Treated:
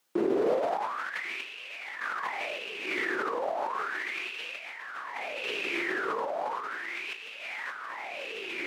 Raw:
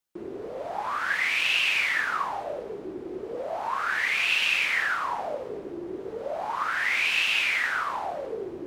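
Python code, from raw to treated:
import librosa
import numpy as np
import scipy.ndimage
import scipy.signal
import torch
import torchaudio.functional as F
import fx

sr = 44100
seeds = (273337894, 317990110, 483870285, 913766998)

y = x + 10.0 ** (-6.0 / 20.0) * np.pad(x, (int(1095 * sr / 1000.0), 0))[:len(x)]
y = fx.tremolo_random(y, sr, seeds[0], hz=3.5, depth_pct=55)
y = fx.over_compress(y, sr, threshold_db=-43.0, ratio=-1.0)
y = scipy.signal.sosfilt(scipy.signal.butter(2, 230.0, 'highpass', fs=sr, output='sos'), y)
y = fx.high_shelf(y, sr, hz=5600.0, db=-4.5)
y = y * 10.0 ** (8.0 / 20.0)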